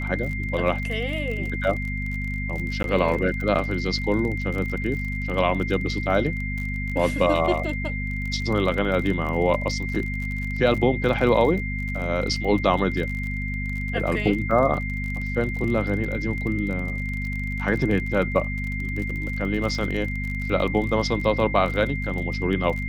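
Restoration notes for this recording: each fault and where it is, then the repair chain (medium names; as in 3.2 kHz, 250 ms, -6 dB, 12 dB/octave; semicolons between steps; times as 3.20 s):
crackle 38 per s -30 dBFS
hum 50 Hz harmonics 5 -29 dBFS
whine 2.1 kHz -31 dBFS
2.83–2.84 s: dropout 12 ms
14.51 s: dropout 2.9 ms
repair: de-click; band-stop 2.1 kHz, Q 30; de-hum 50 Hz, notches 5; interpolate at 2.83 s, 12 ms; interpolate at 14.51 s, 2.9 ms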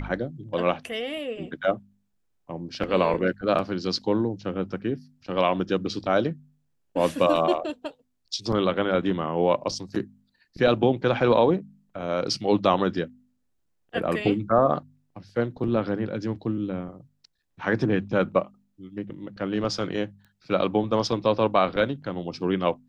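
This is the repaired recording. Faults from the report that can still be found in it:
nothing left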